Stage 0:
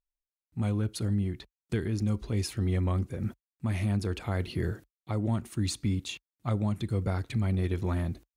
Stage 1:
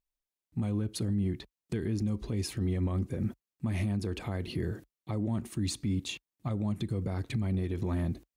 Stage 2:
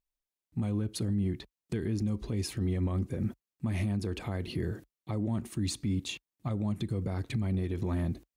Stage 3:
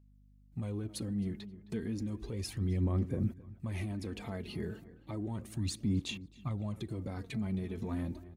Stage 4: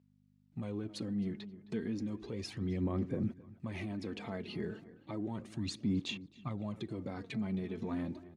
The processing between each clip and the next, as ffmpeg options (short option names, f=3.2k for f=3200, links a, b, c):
-af "equalizer=f=250:w=0.66:g=5,bandreject=f=1.4k:w=13,alimiter=limit=-23dB:level=0:latency=1:release=96"
-af anull
-filter_complex "[0:a]asplit=2[a][b];[b]adelay=265,lowpass=f=2.6k:p=1,volume=-16dB,asplit=2[c][d];[d]adelay=265,lowpass=f=2.6k:p=1,volume=0.44,asplit=2[e][f];[f]adelay=265,lowpass=f=2.6k:p=1,volume=0.44,asplit=2[g][h];[h]adelay=265,lowpass=f=2.6k:p=1,volume=0.44[i];[a][c][e][g][i]amix=inputs=5:normalize=0,aphaser=in_gain=1:out_gain=1:delay=4.8:decay=0.47:speed=0.33:type=sinusoidal,aeval=exprs='val(0)+0.00178*(sin(2*PI*50*n/s)+sin(2*PI*2*50*n/s)/2+sin(2*PI*3*50*n/s)/3+sin(2*PI*4*50*n/s)/4+sin(2*PI*5*50*n/s)/5)':c=same,volume=-5.5dB"
-af "highpass=150,lowpass=5.3k,volume=1dB"